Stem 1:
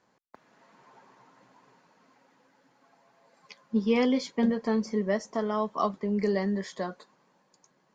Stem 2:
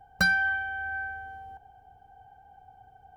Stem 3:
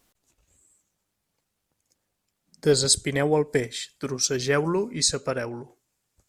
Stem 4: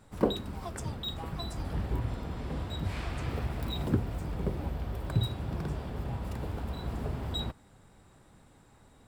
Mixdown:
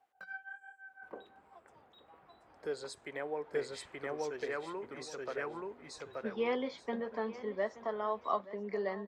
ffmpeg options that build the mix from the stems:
-filter_complex "[0:a]equalizer=f=3.7k:w=4.1:g=9.5,adelay=2500,volume=-4.5dB,asplit=2[a][b];[b]volume=-16.5dB[c];[1:a]acontrast=75,tremolo=f=5.9:d=0.93,flanger=delay=16:depth=7.6:speed=1.2,volume=-19.5dB[d];[2:a]volume=-8.5dB,asplit=2[e][f];[f]volume=-5dB[g];[3:a]adelay=900,volume=-16dB,asplit=2[h][i];[i]volume=-21.5dB[j];[d][e][h]amix=inputs=3:normalize=0,highpass=f=180:p=1,acompressor=threshold=-39dB:ratio=1.5,volume=0dB[k];[c][g][j]amix=inputs=3:normalize=0,aecho=0:1:877|1754|2631:1|0.21|0.0441[l];[a][k][l]amix=inputs=3:normalize=0,acrossover=split=370 2600:gain=0.158 1 0.126[m][n][o];[m][n][o]amix=inputs=3:normalize=0"

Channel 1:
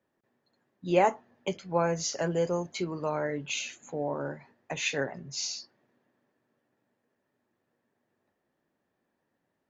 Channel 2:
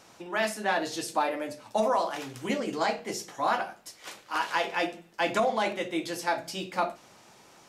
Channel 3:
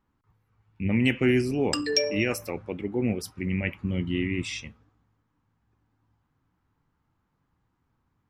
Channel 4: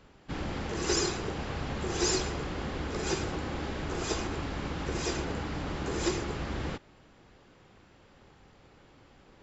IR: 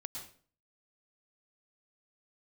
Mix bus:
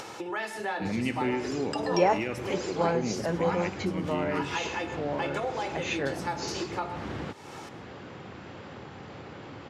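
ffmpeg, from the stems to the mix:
-filter_complex "[0:a]adelay=1050,volume=-0.5dB[a];[1:a]highshelf=f=10k:g=8.5,aecho=1:1:2.3:0.48,volume=-2.5dB,asplit=2[b][c];[c]volume=-10.5dB[d];[2:a]volume=0.5dB,asplit=2[e][f];[f]volume=-13dB[g];[3:a]adelay=550,volume=0dB[h];[b][e][h]amix=inputs=3:normalize=0,highpass=f=87:w=0.5412,highpass=f=87:w=1.3066,acompressor=threshold=-37dB:ratio=2,volume=0dB[i];[4:a]atrim=start_sample=2205[j];[d][g]amix=inputs=2:normalize=0[k];[k][j]afir=irnorm=-1:irlink=0[l];[a][i][l]amix=inputs=3:normalize=0,aemphasis=mode=reproduction:type=50fm,acompressor=mode=upward:threshold=-29dB:ratio=2.5"

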